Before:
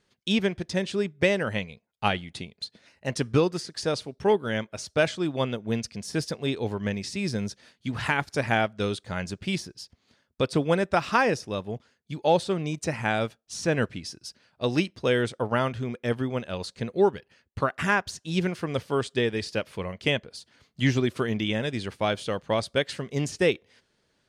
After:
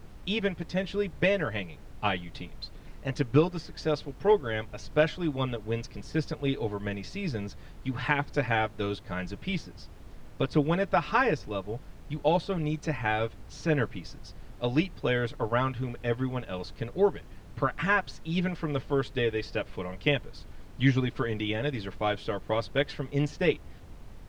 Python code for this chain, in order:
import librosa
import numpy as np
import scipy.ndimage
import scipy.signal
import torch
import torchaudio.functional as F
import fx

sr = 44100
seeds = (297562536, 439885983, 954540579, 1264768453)

y = scipy.signal.sosfilt(scipy.signal.butter(2, 3700.0, 'lowpass', fs=sr, output='sos'), x)
y = y + 0.64 * np.pad(y, (int(6.8 * sr / 1000.0), 0))[:len(y)]
y = fx.dmg_noise_colour(y, sr, seeds[0], colour='brown', level_db=-40.0)
y = y * 10.0 ** (-3.5 / 20.0)